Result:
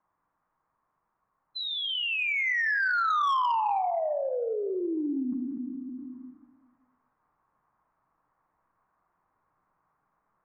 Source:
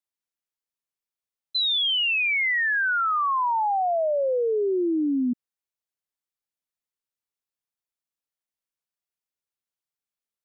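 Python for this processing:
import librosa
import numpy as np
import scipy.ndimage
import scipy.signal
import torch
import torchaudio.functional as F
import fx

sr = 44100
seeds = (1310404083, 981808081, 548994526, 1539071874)

p1 = fx.peak_eq(x, sr, hz=1100.0, db=6.5, octaves=0.29)
p2 = fx.room_shoebox(p1, sr, seeds[0], volume_m3=380.0, walls='mixed', distance_m=0.54)
p3 = fx.env_lowpass(p2, sr, base_hz=600.0, full_db=-20.0)
p4 = fx.rider(p3, sr, range_db=10, speed_s=2.0)
p5 = scipy.signal.sosfilt(scipy.signal.butter(4, 2000.0, 'lowpass', fs=sr, output='sos'), p4)
p6 = fx.low_shelf_res(p5, sr, hz=700.0, db=-12.0, q=1.5)
p7 = p6 + fx.echo_single(p6, sr, ms=182, db=-16.5, dry=0)
p8 = 10.0 ** (-15.5 / 20.0) * np.tanh(p7 / 10.0 ** (-15.5 / 20.0))
p9 = fx.env_flatten(p8, sr, amount_pct=70)
y = p9 * 10.0 ** (-7.0 / 20.0)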